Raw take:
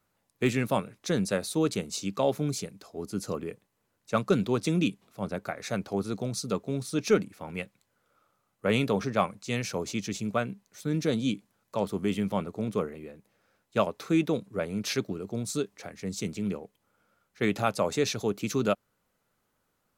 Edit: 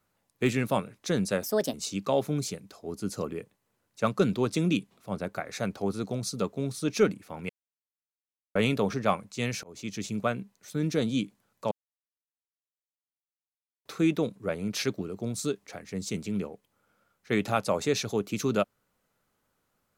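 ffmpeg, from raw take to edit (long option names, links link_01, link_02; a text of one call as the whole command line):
ffmpeg -i in.wav -filter_complex "[0:a]asplit=8[link_01][link_02][link_03][link_04][link_05][link_06][link_07][link_08];[link_01]atrim=end=1.434[link_09];[link_02]atrim=start=1.43:end=1.84,asetpts=PTS-STARTPTS,asetrate=59535,aresample=44100,atrim=end_sample=13393,asetpts=PTS-STARTPTS[link_10];[link_03]atrim=start=1.836:end=7.6,asetpts=PTS-STARTPTS,afade=type=out:start_time=5.76:duration=0.004:curve=hsin[link_11];[link_04]atrim=start=7.6:end=8.66,asetpts=PTS-STARTPTS,volume=0[link_12];[link_05]atrim=start=8.66:end=9.74,asetpts=PTS-STARTPTS,afade=type=in:duration=0.004:curve=hsin,afade=type=out:start_time=1.076:duration=0.004:curve=hsin[link_13];[link_06]atrim=start=9.74:end=11.82,asetpts=PTS-STARTPTS,afade=type=in:duration=0.57:curve=qsin,afade=type=out:start_time=2.076:duration=0.004:curve=hsin[link_14];[link_07]atrim=start=11.82:end=13.96,asetpts=PTS-STARTPTS,volume=0[link_15];[link_08]atrim=start=13.96,asetpts=PTS-STARTPTS,afade=type=in:duration=0.004:curve=hsin[link_16];[link_09][link_10]acrossfade=duration=0.004:curve1=hsin:curve2=hsin[link_17];[link_11][link_12][link_13][link_14][link_15][link_16]concat=n=6:v=0:a=1[link_18];[link_17][link_18]acrossfade=duration=0.004:curve1=hsin:curve2=hsin" out.wav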